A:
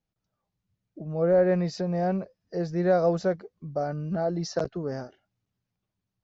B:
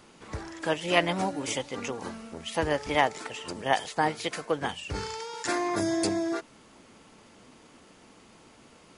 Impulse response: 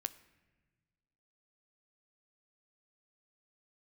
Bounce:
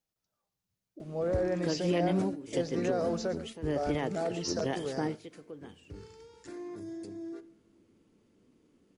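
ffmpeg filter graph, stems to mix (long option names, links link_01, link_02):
-filter_complex "[0:a]bass=frequency=250:gain=-8,treble=frequency=4000:gain=7,alimiter=limit=-22dB:level=0:latency=1:release=31,volume=-3dB,asplit=3[link_01][link_02][link_03];[link_02]volume=-14dB[link_04];[1:a]lowshelf=frequency=540:width_type=q:width=1.5:gain=10.5,alimiter=limit=-14dB:level=0:latency=1:release=77,adelay=1000,volume=-10dB,asplit=2[link_05][link_06];[link_06]volume=-10.5dB[link_07];[link_03]apad=whole_len=440094[link_08];[link_05][link_08]sidechaingate=range=-33dB:threshold=-51dB:ratio=16:detection=peak[link_09];[2:a]atrim=start_sample=2205[link_10];[link_07][link_10]afir=irnorm=-1:irlink=0[link_11];[link_04]aecho=0:1:115:1[link_12];[link_01][link_09][link_11][link_12]amix=inputs=4:normalize=0"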